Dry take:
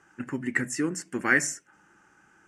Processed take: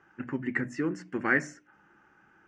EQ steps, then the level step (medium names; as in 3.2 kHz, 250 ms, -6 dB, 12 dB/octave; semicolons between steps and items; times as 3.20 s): hum notches 60/120/180/240/300 Hz; dynamic bell 3 kHz, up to -4 dB, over -37 dBFS, Q 0.89; distance through air 220 m; 0.0 dB